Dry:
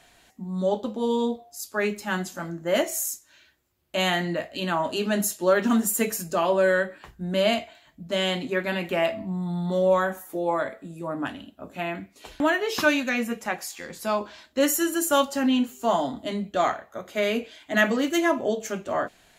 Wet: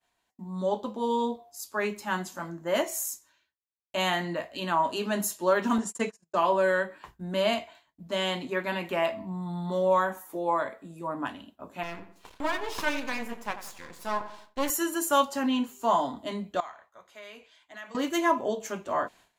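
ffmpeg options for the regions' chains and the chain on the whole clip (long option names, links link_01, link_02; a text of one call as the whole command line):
ffmpeg -i in.wav -filter_complex "[0:a]asettb=1/sr,asplit=3[link_01][link_02][link_03];[link_01]atrim=end=5.784[link_04];[link_02]atrim=start=5.78:end=6.36,asetpts=PTS-STARTPTS,afade=type=in:duration=0.004:curve=qsin,afade=type=out:start_time=0.576:duration=0.004:curve=qsin,lowpass=frequency=7900:width=0.5412,lowpass=frequency=7900:width=1.3066,agate=range=-36dB:threshold=-31dB:ratio=16:release=100:detection=peak[link_05];[link_03]atrim=start=6.356[link_06];[link_04][link_05]acrossfade=duration=0.004:curve1=hsin:curve2=qsin[link_07];[link_07][link_06]acrossfade=duration=0.004:curve1=qsin:curve2=hsin,asettb=1/sr,asplit=3[link_08][link_09][link_10];[link_08]atrim=end=11.834[link_11];[link_09]atrim=start=11.83:end=14.7,asetpts=PTS-STARTPTS,afade=type=in:duration=0.004:curve=qsin,afade=type=out:start_time=2.866:duration=0.004:curve=qsin,aeval=exprs='max(val(0),0)':channel_layout=same,asplit=2[link_12][link_13];[link_13]adelay=88,lowpass=frequency=2000:poles=1,volume=-11dB,asplit=2[link_14][link_15];[link_15]adelay=88,lowpass=frequency=2000:poles=1,volume=0.45,asplit=2[link_16][link_17];[link_17]adelay=88,lowpass=frequency=2000:poles=1,volume=0.45,asplit=2[link_18][link_19];[link_19]adelay=88,lowpass=frequency=2000:poles=1,volume=0.45,asplit=2[link_20][link_21];[link_21]adelay=88,lowpass=frequency=2000:poles=1,volume=0.45[link_22];[link_12][link_14][link_16][link_18][link_20][link_22]amix=inputs=6:normalize=0,atrim=end_sample=126567[link_23];[link_10]atrim=start=14.696[link_24];[link_11][link_23]acrossfade=duration=0.004:curve1=hsin:curve2=qsin[link_25];[link_25][link_24]acrossfade=duration=0.004:curve1=qsin:curve2=hsin,asettb=1/sr,asplit=3[link_26][link_27][link_28];[link_26]atrim=end=16.604[link_29];[link_27]atrim=start=16.6:end=17.95,asetpts=PTS-STARTPTS,afade=type=in:duration=0.004:curve=qsin,afade=type=out:start_time=1.346:duration=0.004:curve=qsin,lowpass=11000,equalizer=frequency=230:width_type=o:width=2.7:gain=-11.5,acompressor=threshold=-49dB:ratio=2:attack=3.2:release=140:knee=1:detection=peak[link_30];[link_28]atrim=start=17.946[link_31];[link_29][link_30]acrossfade=duration=0.004:curve1=hsin:curve2=qsin[link_32];[link_32][link_31]acrossfade=duration=0.004:curve1=qsin:curve2=hsin,lowshelf=frequency=170:gain=-3.5,agate=range=-33dB:threshold=-46dB:ratio=3:detection=peak,equalizer=frequency=1000:width_type=o:width=0.36:gain=9.5,volume=-4dB" out.wav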